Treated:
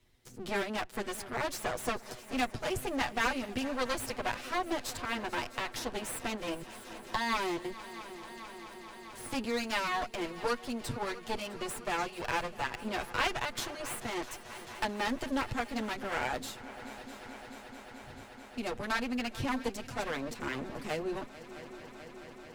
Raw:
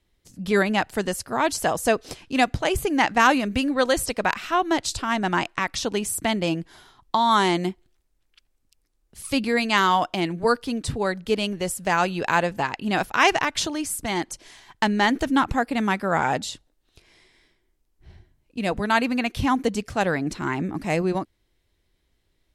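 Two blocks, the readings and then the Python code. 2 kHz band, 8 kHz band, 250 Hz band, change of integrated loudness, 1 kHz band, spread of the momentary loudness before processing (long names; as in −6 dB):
−10.5 dB, −11.0 dB, −12.5 dB, −12.0 dB, −12.5 dB, 9 LU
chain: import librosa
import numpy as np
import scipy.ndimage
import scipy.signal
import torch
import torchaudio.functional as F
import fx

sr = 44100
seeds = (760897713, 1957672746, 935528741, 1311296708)

y = fx.lower_of_two(x, sr, delay_ms=8.2)
y = fx.echo_heads(y, sr, ms=218, heads='second and third', feedback_pct=73, wet_db=-20.5)
y = fx.band_squash(y, sr, depth_pct=40)
y = F.gain(torch.from_numpy(y), -9.0).numpy()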